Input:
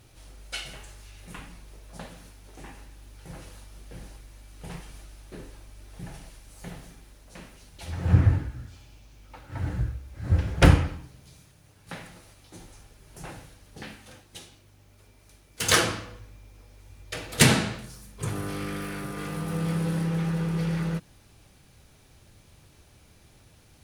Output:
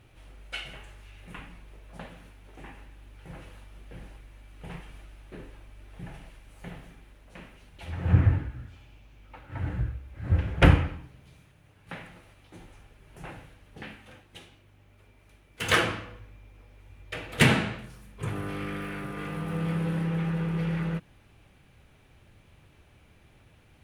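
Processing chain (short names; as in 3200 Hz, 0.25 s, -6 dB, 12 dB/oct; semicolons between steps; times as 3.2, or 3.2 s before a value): resonant high shelf 3700 Hz -9 dB, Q 1.5; gain -1.5 dB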